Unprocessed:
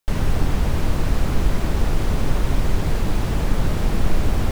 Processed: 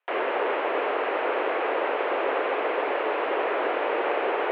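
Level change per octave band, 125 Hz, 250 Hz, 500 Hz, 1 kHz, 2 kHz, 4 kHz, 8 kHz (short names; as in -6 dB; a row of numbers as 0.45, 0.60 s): under -40 dB, -9.5 dB, +6.5 dB, +6.5 dB, +5.5 dB, -3.5 dB, under -40 dB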